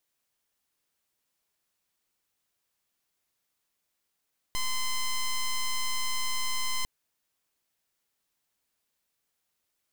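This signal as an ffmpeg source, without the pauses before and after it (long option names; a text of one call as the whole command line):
ffmpeg -f lavfi -i "aevalsrc='0.0398*(2*lt(mod(1030*t,1),0.08)-1)':duration=2.3:sample_rate=44100" out.wav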